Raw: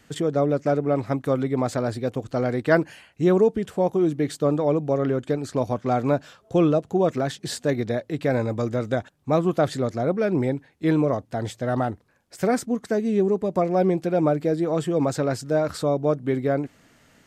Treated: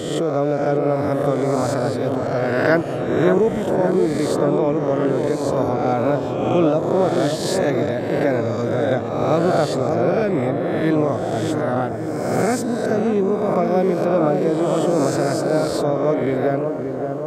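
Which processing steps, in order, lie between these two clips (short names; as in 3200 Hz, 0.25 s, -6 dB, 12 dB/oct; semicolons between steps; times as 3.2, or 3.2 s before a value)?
spectral swells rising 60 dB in 1.27 s; dark delay 0.576 s, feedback 64%, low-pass 1300 Hz, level -5.5 dB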